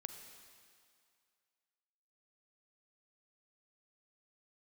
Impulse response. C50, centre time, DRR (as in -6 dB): 7.0 dB, 39 ms, 6.5 dB